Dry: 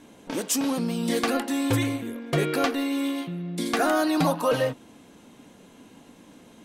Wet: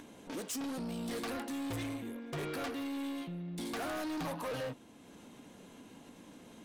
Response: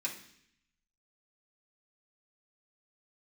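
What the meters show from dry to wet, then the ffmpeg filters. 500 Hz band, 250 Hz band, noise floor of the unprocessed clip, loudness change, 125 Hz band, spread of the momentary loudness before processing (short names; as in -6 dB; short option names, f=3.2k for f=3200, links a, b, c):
-14.5 dB, -12.5 dB, -53 dBFS, -13.5 dB, -13.5 dB, 9 LU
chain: -af "acompressor=mode=upward:threshold=-40dB:ratio=2.5,asoftclip=type=tanh:threshold=-28.5dB,volume=-7dB"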